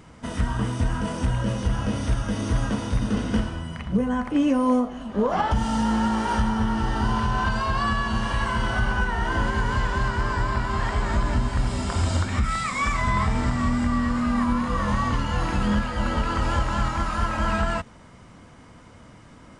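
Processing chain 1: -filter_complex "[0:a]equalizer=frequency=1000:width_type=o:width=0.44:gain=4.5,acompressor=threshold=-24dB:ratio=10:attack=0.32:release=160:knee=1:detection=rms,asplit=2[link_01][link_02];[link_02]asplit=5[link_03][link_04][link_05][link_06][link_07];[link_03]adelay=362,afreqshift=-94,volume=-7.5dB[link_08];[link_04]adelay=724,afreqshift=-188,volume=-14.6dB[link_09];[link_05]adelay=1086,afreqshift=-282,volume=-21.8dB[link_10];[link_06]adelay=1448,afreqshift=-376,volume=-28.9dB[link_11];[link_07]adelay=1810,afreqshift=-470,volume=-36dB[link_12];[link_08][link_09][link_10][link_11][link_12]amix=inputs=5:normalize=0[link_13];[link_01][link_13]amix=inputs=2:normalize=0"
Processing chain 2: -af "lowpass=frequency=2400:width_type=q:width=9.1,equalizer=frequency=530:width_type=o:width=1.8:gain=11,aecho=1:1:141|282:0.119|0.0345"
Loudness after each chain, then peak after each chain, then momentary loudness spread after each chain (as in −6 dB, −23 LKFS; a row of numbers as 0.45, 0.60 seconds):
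−31.0, −18.5 LKFS; −18.5, −2.5 dBFS; 3, 7 LU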